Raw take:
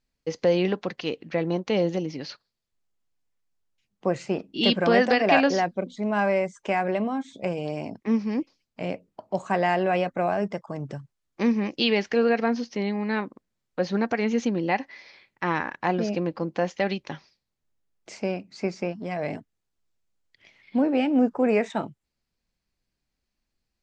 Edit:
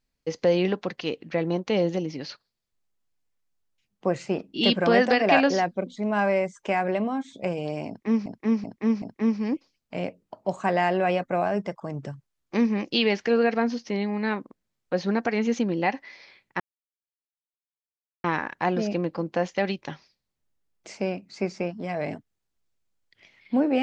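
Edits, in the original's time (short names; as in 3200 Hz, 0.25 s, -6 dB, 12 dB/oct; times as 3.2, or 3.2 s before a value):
7.88–8.26 loop, 4 plays
15.46 insert silence 1.64 s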